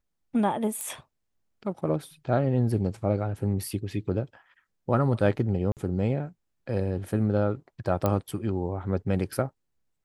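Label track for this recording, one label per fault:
0.810000	0.810000	click −19 dBFS
5.720000	5.770000	drop-out 48 ms
8.060000	8.060000	click −12 dBFS

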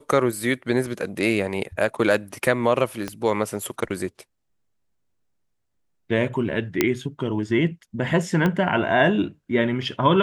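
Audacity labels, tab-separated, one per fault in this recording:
3.080000	3.080000	click −14 dBFS
6.810000	6.810000	click −3 dBFS
8.460000	8.460000	click −11 dBFS

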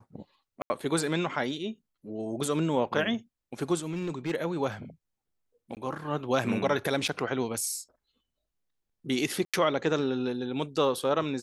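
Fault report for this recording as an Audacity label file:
0.620000	0.700000	drop-out 80 ms
3.840000	4.320000	clipping −26.5 dBFS
5.750000	5.770000	drop-out 18 ms
7.080000	7.090000	drop-out 5.7 ms
9.450000	9.540000	drop-out 86 ms

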